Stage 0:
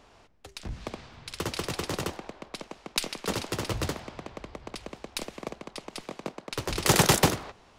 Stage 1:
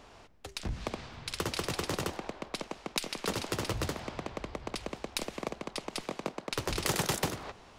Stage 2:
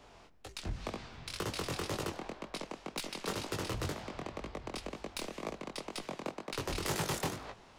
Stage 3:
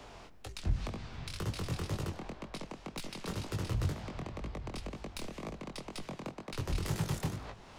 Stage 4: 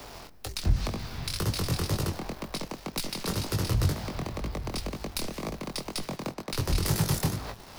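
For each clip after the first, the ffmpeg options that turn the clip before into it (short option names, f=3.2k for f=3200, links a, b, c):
-af "acompressor=threshold=-32dB:ratio=5,volume=2.5dB"
-filter_complex "[0:a]flanger=delay=18.5:depth=6.2:speed=2,acrossover=split=300|1600[a][b][c];[c]asoftclip=type=tanh:threshold=-31dB[d];[a][b][d]amix=inputs=3:normalize=0"
-filter_complex "[0:a]acrossover=split=180[a][b];[b]acompressor=threshold=-59dB:ratio=2[c];[a][c]amix=inputs=2:normalize=0,volume=8dB"
-filter_complex "[0:a]asplit=2[a][b];[b]aeval=exprs='val(0)*gte(abs(val(0)),0.00376)':c=same,volume=-4dB[c];[a][c]amix=inputs=2:normalize=0,aexciter=amount=1.9:drive=4.8:freq=4.2k,volume=3dB"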